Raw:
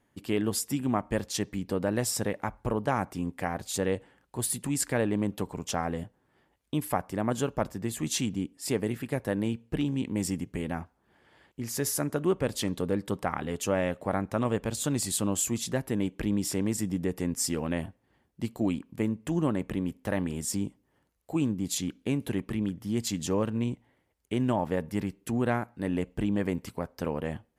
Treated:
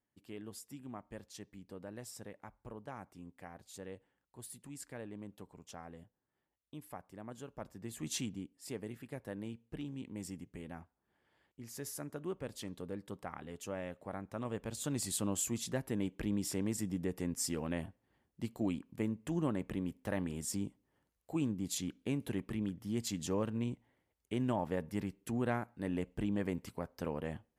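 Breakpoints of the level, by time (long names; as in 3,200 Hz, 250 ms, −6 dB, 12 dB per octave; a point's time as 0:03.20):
0:07.45 −19 dB
0:08.16 −8 dB
0:08.50 −14 dB
0:14.22 −14 dB
0:15.05 −7 dB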